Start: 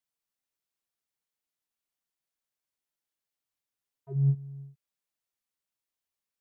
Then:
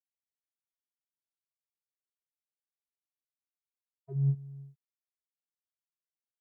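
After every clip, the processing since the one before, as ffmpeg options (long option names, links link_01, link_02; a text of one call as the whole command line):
ffmpeg -i in.wav -af "agate=range=-33dB:threshold=-47dB:ratio=3:detection=peak,volume=-3dB" out.wav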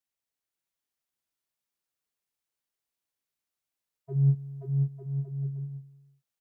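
ffmpeg -i in.wav -af "aecho=1:1:530|901|1161|1342|1470:0.631|0.398|0.251|0.158|0.1,volume=5dB" out.wav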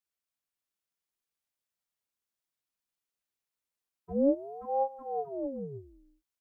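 ffmpeg -i in.wav -af "aeval=exprs='val(0)*sin(2*PI*420*n/s+420*0.6/0.41*sin(2*PI*0.41*n/s))':channel_layout=same" out.wav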